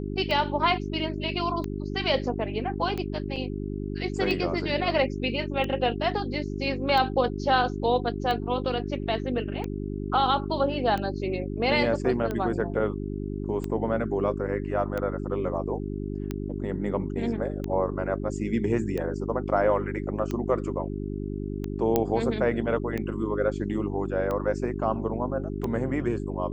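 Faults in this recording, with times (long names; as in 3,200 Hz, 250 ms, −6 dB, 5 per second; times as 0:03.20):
mains hum 50 Hz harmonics 8 −32 dBFS
scratch tick 45 rpm −18 dBFS
0:03.36–0:03.37: drop-out 5.1 ms
0:21.96: click −9 dBFS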